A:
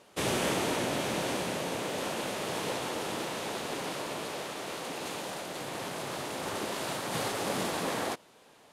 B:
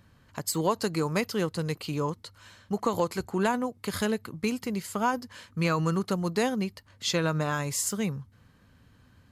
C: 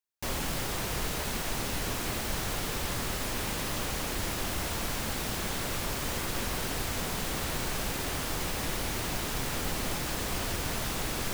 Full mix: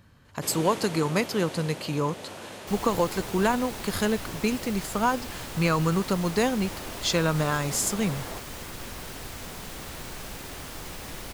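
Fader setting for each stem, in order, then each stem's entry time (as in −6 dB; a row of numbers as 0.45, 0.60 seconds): −7.0, +2.5, −6.0 decibels; 0.25, 0.00, 2.45 seconds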